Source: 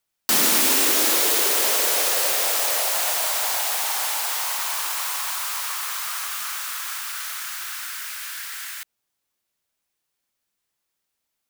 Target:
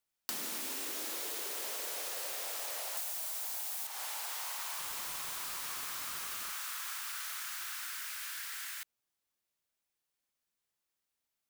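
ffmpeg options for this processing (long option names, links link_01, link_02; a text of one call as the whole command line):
ffmpeg -i in.wav -filter_complex "[0:a]asettb=1/sr,asplit=3[link_01][link_02][link_03];[link_01]atrim=end=2.974[link_04];[link_02]atrim=start=2.97:end=3.87,asetpts=PTS-STARTPTS,afade=type=in:duration=0.004:curve=qsin,afade=type=out:start_time=0.896:duration=0.004:curve=qsin,highshelf=frequency=5400:gain=10[link_05];[link_03]atrim=start=3.866[link_06];[link_04][link_05]acrossfade=duration=0.004:curve1=hsin:curve2=qsin[link_07];[link_07][link_06]acrossfade=duration=0.004:curve1=qsin:curve2=hsin,acompressor=threshold=-28dB:ratio=10,asettb=1/sr,asplit=3[link_08][link_09][link_10];[link_08]atrim=end=4.794[link_11];[link_09]atrim=start=4.79:end=6.51,asetpts=PTS-STARTPTS,afade=type=in:duration=0.004:curve=qsin,afade=type=out:start_time=1.716:duration=0.004:curve=qsin,aeval=exprs='(mod(15.8*val(0)+1,2)-1)/15.8':channel_layout=same[link_12];[link_10]atrim=start=6.506[link_13];[link_11][link_12]acrossfade=duration=0.004:curve1=hsin:curve2=qsin[link_14];[link_14][link_13]acrossfade=duration=0.004:curve1=qsin:curve2=hsin,volume=-8dB" out.wav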